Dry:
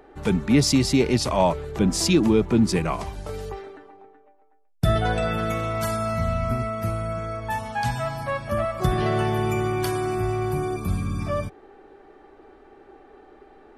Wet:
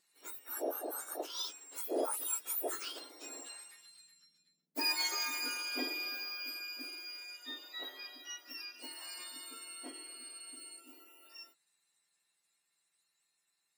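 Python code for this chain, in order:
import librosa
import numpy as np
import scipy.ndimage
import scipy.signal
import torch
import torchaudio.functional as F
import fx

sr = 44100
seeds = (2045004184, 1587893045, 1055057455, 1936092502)

y = fx.octave_mirror(x, sr, pivot_hz=1800.0)
y = fx.doppler_pass(y, sr, speed_mps=5, closest_m=5.1, pass_at_s=4.39)
y = F.gain(torch.from_numpy(y), -5.0).numpy()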